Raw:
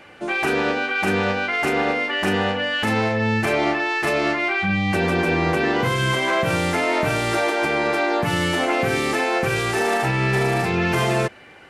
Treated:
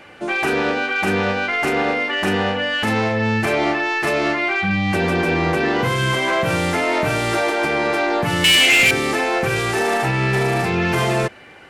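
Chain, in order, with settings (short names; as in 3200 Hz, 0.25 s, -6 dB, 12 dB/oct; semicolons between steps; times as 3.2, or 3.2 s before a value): 8.44–8.91 resonant high shelf 1700 Hz +13.5 dB, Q 3; soft clip -12 dBFS, distortion -12 dB; gain +2.5 dB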